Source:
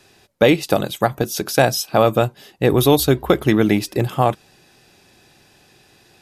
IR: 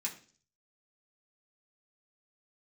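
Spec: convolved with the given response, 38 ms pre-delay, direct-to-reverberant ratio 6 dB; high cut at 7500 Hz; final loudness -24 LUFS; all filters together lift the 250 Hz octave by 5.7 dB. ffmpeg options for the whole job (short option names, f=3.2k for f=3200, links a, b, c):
-filter_complex "[0:a]lowpass=7.5k,equalizer=f=250:t=o:g=7.5,asplit=2[a][b];[1:a]atrim=start_sample=2205,adelay=38[c];[b][c]afir=irnorm=-1:irlink=0,volume=-7dB[d];[a][d]amix=inputs=2:normalize=0,volume=-10dB"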